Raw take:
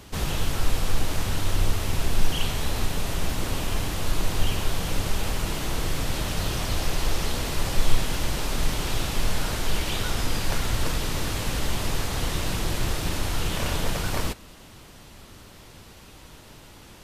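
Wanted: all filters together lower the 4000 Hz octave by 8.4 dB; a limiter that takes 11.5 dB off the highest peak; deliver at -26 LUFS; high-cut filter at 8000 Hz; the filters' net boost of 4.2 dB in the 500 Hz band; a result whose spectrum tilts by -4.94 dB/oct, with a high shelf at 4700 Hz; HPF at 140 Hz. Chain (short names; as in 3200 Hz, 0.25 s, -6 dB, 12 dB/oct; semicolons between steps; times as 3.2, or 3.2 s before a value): HPF 140 Hz; LPF 8000 Hz; bell 500 Hz +5.5 dB; bell 4000 Hz -8 dB; high shelf 4700 Hz -6.5 dB; gain +10.5 dB; limiter -17 dBFS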